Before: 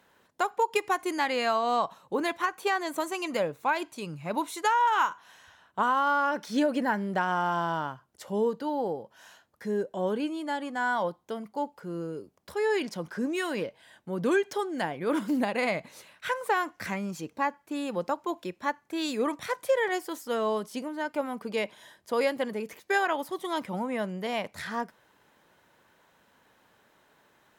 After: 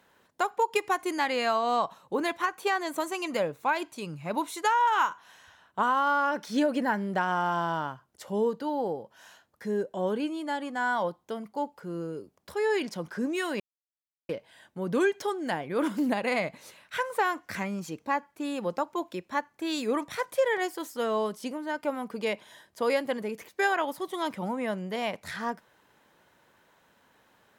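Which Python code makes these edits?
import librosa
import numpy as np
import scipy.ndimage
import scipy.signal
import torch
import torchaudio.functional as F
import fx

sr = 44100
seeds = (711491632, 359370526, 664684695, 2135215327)

y = fx.edit(x, sr, fx.insert_silence(at_s=13.6, length_s=0.69), tone=tone)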